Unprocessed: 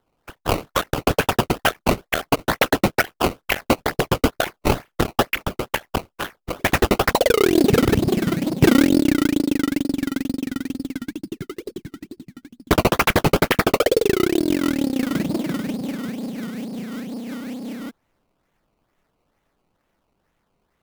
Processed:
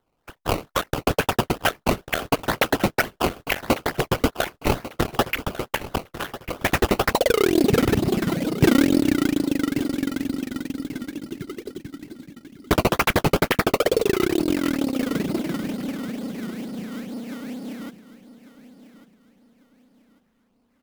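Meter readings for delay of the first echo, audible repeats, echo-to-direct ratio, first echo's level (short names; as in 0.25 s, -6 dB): 1.146 s, 3, -14.5 dB, -15.0 dB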